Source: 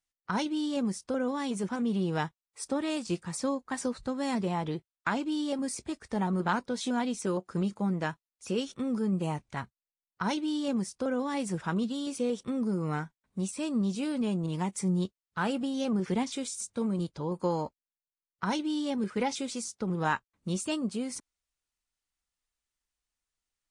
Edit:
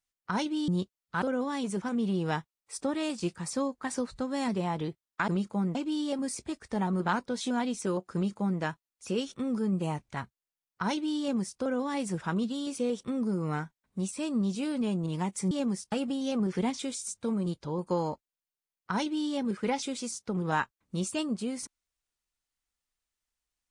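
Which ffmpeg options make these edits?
-filter_complex "[0:a]asplit=7[a][b][c][d][e][f][g];[a]atrim=end=0.682[h];[b]atrim=start=14.908:end=15.452[i];[c]atrim=start=1.088:end=5.152[j];[d]atrim=start=7.538:end=8.012[k];[e]atrim=start=5.148:end=14.912[l];[f]atrim=start=0.678:end=1.092[m];[g]atrim=start=15.448[n];[h][i]acrossfade=d=0.004:c1=hsin:c2=hsin[o];[o][j]acrossfade=d=0.004:c1=hsin:c2=hsin[p];[p][k]acrossfade=d=0.004:c1=hsin:c2=hsin[q];[q][l]acrossfade=d=0.004:c1=hsin:c2=hsin[r];[r][m]acrossfade=d=0.004:c1=hsin:c2=hsin[s];[s][n]acrossfade=d=0.004:c1=hsin:c2=hsin"

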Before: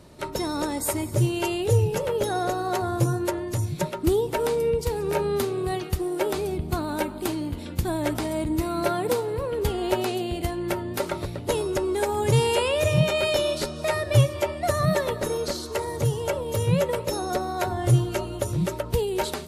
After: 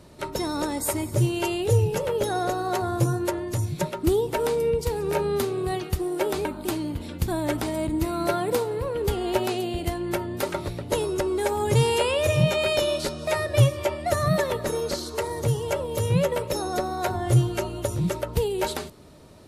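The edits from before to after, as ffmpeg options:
-filter_complex "[0:a]asplit=2[a][b];[a]atrim=end=6.452[c];[b]atrim=start=7.018[d];[c][d]acrossfade=d=0.004:c1=hsin:c2=hsin"

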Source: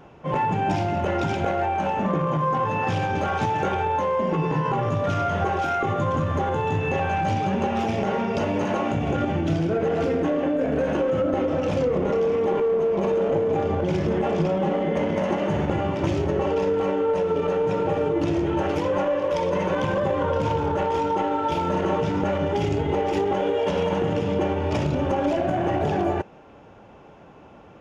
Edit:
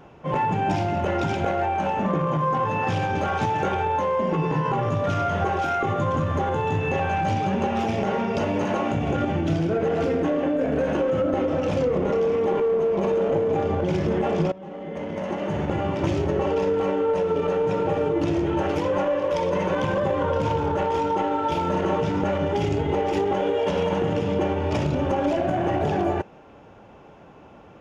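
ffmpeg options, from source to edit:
-filter_complex "[0:a]asplit=2[a][b];[a]atrim=end=14.52,asetpts=PTS-STARTPTS,afade=t=out:st=14.516:d=0.004:c=hsin:silence=0.0944061[c];[b]atrim=start=14.52,asetpts=PTS-STARTPTS,afade=t=in:d=1.43:silence=0.0944061[d];[c][d]concat=n=2:v=0:a=1"

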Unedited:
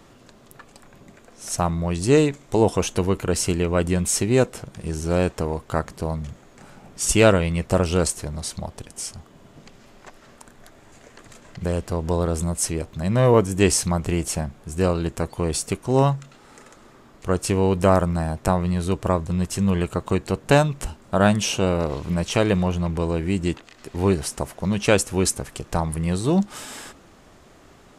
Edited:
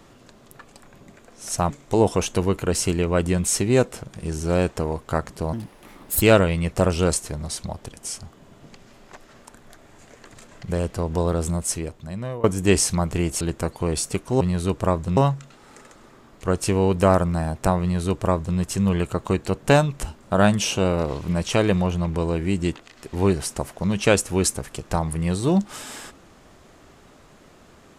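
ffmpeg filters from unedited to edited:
-filter_complex "[0:a]asplit=8[a][b][c][d][e][f][g][h];[a]atrim=end=1.702[i];[b]atrim=start=2.308:end=6.144[j];[c]atrim=start=6.14:end=7.15,asetpts=PTS-STARTPTS,asetrate=64827,aresample=44100[k];[d]atrim=start=7.146:end=13.37,asetpts=PTS-STARTPTS,afade=t=out:st=5.324:d=0.9:silence=0.0749894[l];[e]atrim=start=13.37:end=14.342,asetpts=PTS-STARTPTS,afade=t=in:d=0.004:c=hsin:silence=0.0749894[m];[f]atrim=start=14.978:end=15.982[n];[g]atrim=start=18.628:end=19.392[o];[h]atrim=start=15.978[p];[i][j]acrossfade=d=0.004:c1=hsin:c2=hsin[q];[q][k]acrossfade=d=0.004:c1=hsin:c2=hsin[r];[l][m]concat=n=2:v=0:a=1[s];[r][s]acrossfade=d=0.004:c1=hsin:c2=hsin[t];[t][n]acrossfade=d=0.004:c1=hsin:c2=hsin[u];[u][o]acrossfade=d=0.004:c1=hsin:c2=hsin[v];[v][p]acrossfade=d=0.004:c1=hsin:c2=hsin"

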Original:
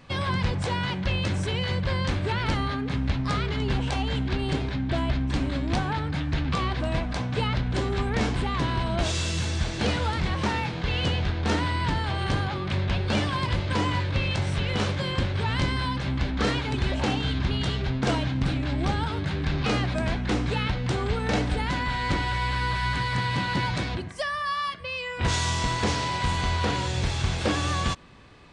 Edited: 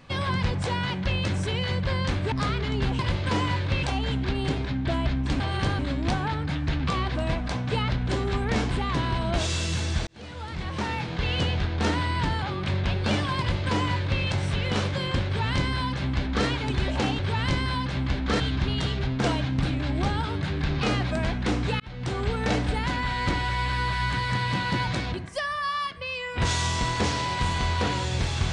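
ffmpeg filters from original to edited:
-filter_complex "[0:a]asplit=11[a][b][c][d][e][f][g][h][i][j][k];[a]atrim=end=2.322[l];[b]atrim=start=3.198:end=3.872[m];[c]atrim=start=13.428:end=14.272[n];[d]atrim=start=3.868:end=5.442[o];[e]atrim=start=12.068:end=12.462[p];[f]atrim=start=5.438:end=9.72,asetpts=PTS-STARTPTS,afade=t=out:st=4.278:d=0.004:c=hsin[q];[g]atrim=start=9.72:end=12.072,asetpts=PTS-STARTPTS,afade=t=in:d=1.09[r];[h]atrim=start=12.458:end=17.232[s];[i]atrim=start=15.298:end=16.512[t];[j]atrim=start=17.228:end=20.63,asetpts=PTS-STARTPTS,afade=t=out:st=3.398:d=0.004:c=hsin[u];[k]atrim=start=20.63,asetpts=PTS-STARTPTS,afade=t=in:d=0.58:c=qsin[v];[l][m]acrossfade=d=0.004:c1=hsin:c2=hsin[w];[w][n]acrossfade=d=0.004:c1=hsin:c2=hsin[x];[x][o]acrossfade=d=0.004:c1=hsin:c2=hsin[y];[y][p]acrossfade=d=0.004:c1=hsin:c2=hsin[z];[q][r]concat=n=2:v=0:a=1[aa];[z][aa]acrossfade=d=0.004:c1=hsin:c2=hsin[ab];[ab][s]acrossfade=d=0.004:c1=hsin:c2=hsin[ac];[ac][t]acrossfade=d=0.004:c1=hsin:c2=hsin[ad];[u][v]concat=n=2:v=0:a=1[ae];[ad][ae]acrossfade=d=0.004:c1=hsin:c2=hsin"

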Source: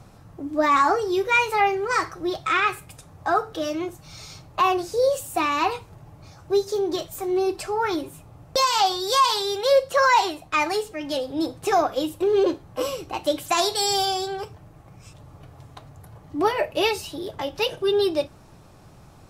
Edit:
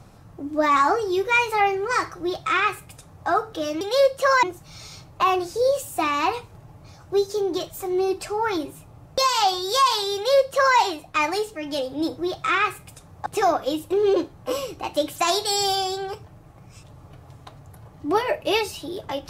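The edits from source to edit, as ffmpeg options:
-filter_complex "[0:a]asplit=5[a][b][c][d][e];[a]atrim=end=3.812[f];[b]atrim=start=9.528:end=10.152[g];[c]atrim=start=3.808:end=11.562[h];[d]atrim=start=2.198:end=3.282[i];[e]atrim=start=11.558[j];[f][g]acrossfade=d=0.004:c1=hsin:c2=hsin[k];[k][h]acrossfade=d=0.004:c1=hsin:c2=hsin[l];[l][i]acrossfade=d=0.004:c1=hsin:c2=hsin[m];[m][j]acrossfade=d=0.004:c1=hsin:c2=hsin"

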